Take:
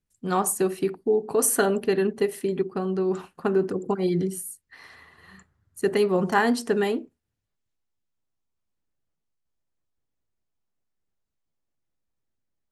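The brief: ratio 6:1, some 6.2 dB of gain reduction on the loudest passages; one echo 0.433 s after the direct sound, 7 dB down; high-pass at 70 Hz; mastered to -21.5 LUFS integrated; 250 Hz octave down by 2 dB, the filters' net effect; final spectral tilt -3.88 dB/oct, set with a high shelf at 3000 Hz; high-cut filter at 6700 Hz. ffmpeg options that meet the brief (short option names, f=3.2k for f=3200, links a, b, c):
-af "highpass=70,lowpass=6.7k,equalizer=f=250:t=o:g=-3,highshelf=f=3k:g=-4.5,acompressor=threshold=-25dB:ratio=6,aecho=1:1:433:0.447,volume=9dB"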